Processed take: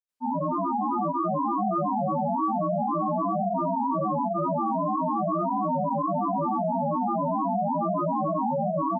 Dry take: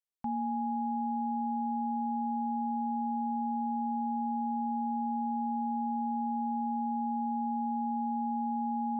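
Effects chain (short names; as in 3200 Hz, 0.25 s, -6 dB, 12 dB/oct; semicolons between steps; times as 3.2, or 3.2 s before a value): feedback echo 0.23 s, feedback 58%, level -16.5 dB; grains, grains 30/s, pitch spread up and down by 7 st; gain +8.5 dB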